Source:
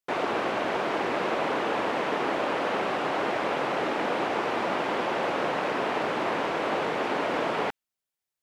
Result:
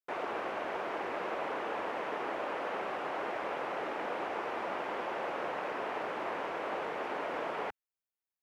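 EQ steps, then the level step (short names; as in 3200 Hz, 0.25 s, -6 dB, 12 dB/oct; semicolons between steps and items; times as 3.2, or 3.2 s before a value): ten-band EQ 125 Hz -8 dB, 250 Hz -5 dB, 4000 Hz -6 dB, 8000 Hz -5 dB; -7.5 dB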